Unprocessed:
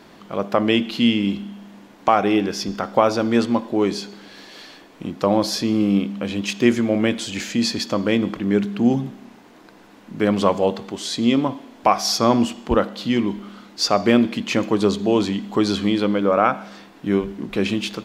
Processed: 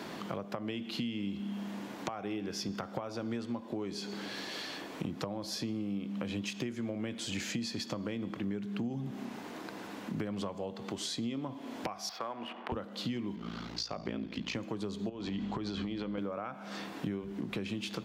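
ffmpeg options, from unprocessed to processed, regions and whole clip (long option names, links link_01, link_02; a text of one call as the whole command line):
ffmpeg -i in.wav -filter_complex "[0:a]asettb=1/sr,asplit=3[link_01][link_02][link_03];[link_01]atrim=end=12.094[link_04];[link_02]atrim=start=12.09:end=12.72,asetpts=PTS-STARTPTS,afade=type=in:duration=0.004:curve=qsin,afade=type=out:start_time=0.626:duration=0.004:curve=qsin,highpass=150,lowpass=4200,adynamicsmooth=sensitivity=8:basefreq=1600,acrossover=split=540 3200:gain=0.141 1 0.178[link_05][link_06][link_07];[link_05][link_06][link_07]amix=inputs=3:normalize=0[link_08];[link_03]atrim=start=12.716[link_09];[link_04][link_08]acrossfade=duration=0.004:curve1=hsin:curve2=qsin[link_10];[link_10][link_09]acrossfade=duration=0.004:curve1=qsin:curve2=hsin,asettb=1/sr,asplit=3[link_11][link_12][link_13];[link_11]atrim=end=13.354[link_14];[link_12]atrim=start=13.35:end=14.55,asetpts=PTS-STARTPTS,afade=type=in:duration=0.004:curve=qsin,afade=type=out:start_time=1.196:duration=0.004:curve=qsin,highshelf=frequency=7000:width_type=q:width=1.5:gain=-8,aeval=exprs='val(0)*sin(2*PI*28*n/s)':channel_layout=same,aeval=exprs='val(0)+0.00398*(sin(2*PI*60*n/s)+sin(2*PI*2*60*n/s)/2+sin(2*PI*3*60*n/s)/3+sin(2*PI*4*60*n/s)/4+sin(2*PI*5*60*n/s)/5)':channel_layout=same[link_15];[link_13]atrim=start=14.546[link_16];[link_14][link_15]acrossfade=duration=0.004:curve1=hsin:curve2=qsin[link_17];[link_17][link_16]acrossfade=duration=0.004:curve1=qsin:curve2=hsin,asettb=1/sr,asplit=3[link_18][link_19][link_20];[link_18]atrim=end=15.094[link_21];[link_19]atrim=start=15.09:end=16.18,asetpts=PTS-STARTPTS,afade=type=in:duration=0.004:curve=qsin,afade=type=out:start_time=1.086:duration=0.004:curve=qsin,lowpass=4900,acompressor=threshold=-25dB:ratio=12:attack=3.2:release=140:knee=1:detection=peak,aeval=exprs='val(0)+0.00562*(sin(2*PI*50*n/s)+sin(2*PI*2*50*n/s)/2+sin(2*PI*3*50*n/s)/3+sin(2*PI*4*50*n/s)/4+sin(2*PI*5*50*n/s)/5)':channel_layout=same[link_22];[link_20]atrim=start=16.176[link_23];[link_21][link_22]acrossfade=duration=0.004:curve1=hsin:curve2=qsin[link_24];[link_24][link_23]acrossfade=duration=0.004:curve1=qsin:curve2=hsin,acompressor=threshold=-30dB:ratio=6,highpass=100,acrossover=split=130[link_25][link_26];[link_26]acompressor=threshold=-43dB:ratio=3[link_27];[link_25][link_27]amix=inputs=2:normalize=0,volume=4.5dB" out.wav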